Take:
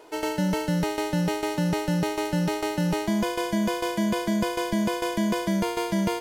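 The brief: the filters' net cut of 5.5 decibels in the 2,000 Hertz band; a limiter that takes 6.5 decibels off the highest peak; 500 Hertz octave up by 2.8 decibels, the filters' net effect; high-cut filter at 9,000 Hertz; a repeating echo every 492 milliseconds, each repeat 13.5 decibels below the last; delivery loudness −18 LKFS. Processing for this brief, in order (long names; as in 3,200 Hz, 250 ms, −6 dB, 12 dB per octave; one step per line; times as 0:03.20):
low-pass filter 9,000 Hz
parametric band 500 Hz +4 dB
parametric band 2,000 Hz −7.5 dB
brickwall limiter −18 dBFS
repeating echo 492 ms, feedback 21%, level −13.5 dB
level +8.5 dB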